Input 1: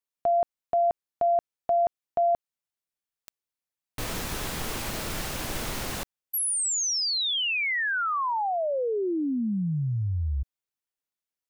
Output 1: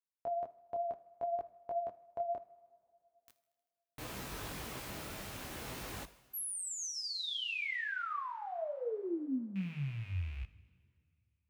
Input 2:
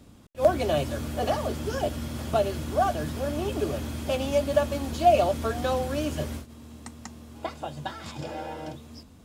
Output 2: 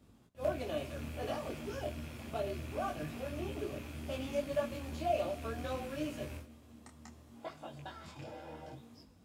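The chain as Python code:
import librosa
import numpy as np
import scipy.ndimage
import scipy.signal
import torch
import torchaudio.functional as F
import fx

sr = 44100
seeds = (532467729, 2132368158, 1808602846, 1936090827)

y = fx.rattle_buzz(x, sr, strikes_db=-32.0, level_db=-29.0)
y = fx.peak_eq(y, sr, hz=6400.0, db=-3.0, octaves=2.0)
y = fx.echo_thinned(y, sr, ms=78, feedback_pct=69, hz=380.0, wet_db=-22.5)
y = fx.dynamic_eq(y, sr, hz=770.0, q=2.4, threshold_db=-38.0, ratio=4.0, max_db=-4)
y = scipy.signal.sosfilt(scipy.signal.butter(2, 43.0, 'highpass', fs=sr, output='sos'), y)
y = fx.rev_double_slope(y, sr, seeds[0], early_s=0.51, late_s=2.7, knee_db=-14, drr_db=13.0)
y = fx.detune_double(y, sr, cents=23)
y = F.gain(torch.from_numpy(y), -7.0).numpy()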